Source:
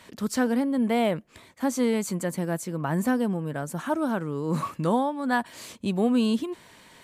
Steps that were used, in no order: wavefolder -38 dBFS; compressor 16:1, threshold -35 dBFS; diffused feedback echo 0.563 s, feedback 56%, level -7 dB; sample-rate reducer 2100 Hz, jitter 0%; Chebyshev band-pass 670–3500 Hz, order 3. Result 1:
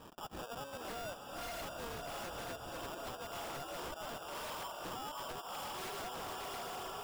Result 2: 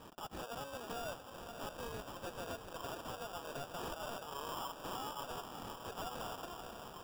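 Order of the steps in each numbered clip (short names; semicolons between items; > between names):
Chebyshev band-pass > sample-rate reducer > diffused feedback echo > compressor > wavefolder; Chebyshev band-pass > compressor > wavefolder > diffused feedback echo > sample-rate reducer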